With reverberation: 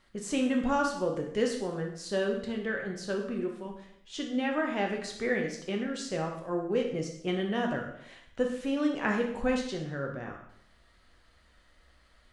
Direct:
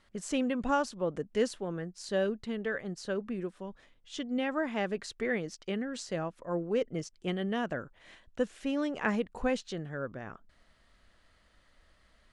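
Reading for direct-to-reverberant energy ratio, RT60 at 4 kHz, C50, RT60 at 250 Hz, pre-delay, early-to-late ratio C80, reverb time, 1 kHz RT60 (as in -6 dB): 1.0 dB, 0.65 s, 5.5 dB, 0.70 s, 5 ms, 8.5 dB, 0.75 s, 0.70 s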